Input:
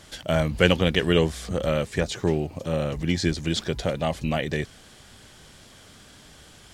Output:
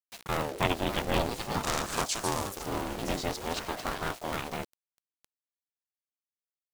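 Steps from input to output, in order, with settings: cycle switcher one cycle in 2, inverted; 1.62–2.66 s: peaking EQ 6.6 kHz +14.5 dB 1.5 oct; ever faster or slower copies 673 ms, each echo +5 st, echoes 2, each echo -6 dB; word length cut 6-bit, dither none; ring modulator with a swept carrier 490 Hz, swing 45%, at 0.5 Hz; trim -6 dB

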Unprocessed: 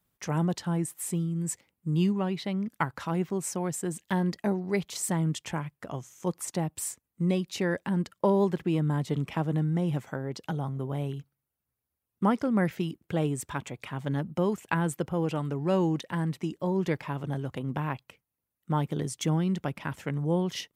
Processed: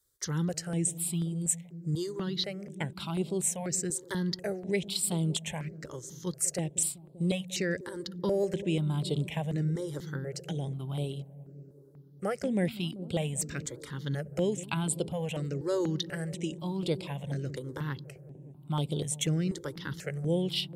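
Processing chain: graphic EQ 250/500/1000/4000/8000 Hz -5/+4/-8/+9/+9 dB; on a send: feedback echo behind a low-pass 194 ms, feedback 77%, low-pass 460 Hz, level -13.5 dB; on the sum: stepped phaser 4.1 Hz 710–6200 Hz

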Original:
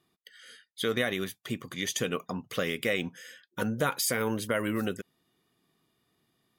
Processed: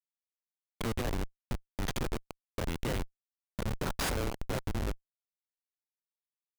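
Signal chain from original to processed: cycle switcher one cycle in 3, muted; Schmitt trigger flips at -27 dBFS; trim +4 dB

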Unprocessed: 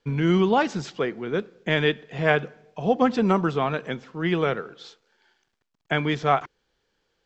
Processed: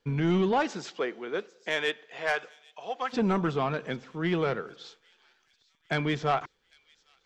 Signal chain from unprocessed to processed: 0.51–3.12 s: high-pass 250 Hz -> 1.1 kHz 12 dB/octave; saturation -15.5 dBFS, distortion -14 dB; feedback echo behind a high-pass 799 ms, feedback 60%, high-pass 4 kHz, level -18 dB; trim -2.5 dB

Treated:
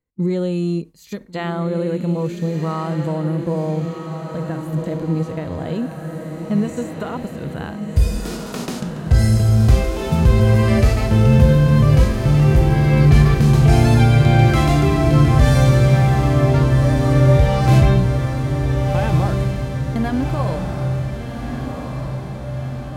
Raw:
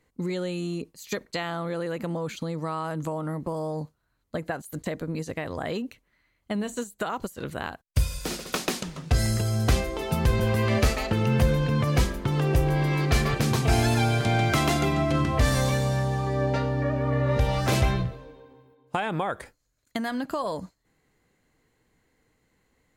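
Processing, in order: gate with hold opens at -48 dBFS; bass shelf 440 Hz +8.5 dB; echo that smears into a reverb 1484 ms, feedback 60%, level -6 dB; harmonic-percussive split percussive -12 dB; trim +4 dB

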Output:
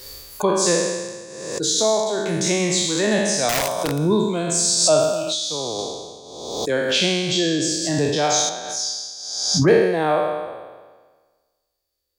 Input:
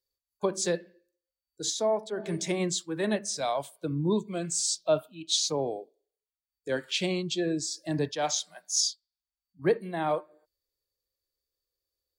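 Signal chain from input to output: spectral sustain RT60 1.46 s; 3.49–3.99 s: integer overflow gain 21 dB; 5.22–5.79 s: compression 12:1, threshold -28 dBFS, peak gain reduction 9.5 dB; 8.49–9.68 s: low-pass 2.1 kHz 6 dB/octave; swell ahead of each attack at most 46 dB/s; trim +6 dB

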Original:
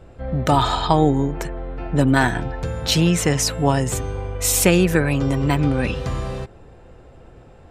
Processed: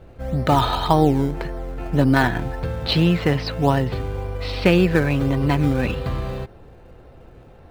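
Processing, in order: elliptic low-pass 4.5 kHz; in parallel at -12 dB: decimation with a swept rate 17×, swing 100% 1.8 Hz; on the sum: trim -1 dB

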